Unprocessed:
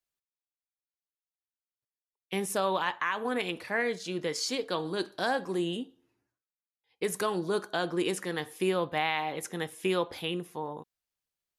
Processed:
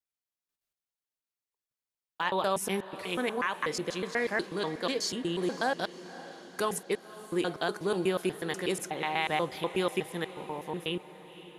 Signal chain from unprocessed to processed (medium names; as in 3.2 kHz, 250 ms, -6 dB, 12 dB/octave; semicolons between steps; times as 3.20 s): slices played last to first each 122 ms, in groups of 6; echo that smears into a reverb 535 ms, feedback 56%, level -15.5 dB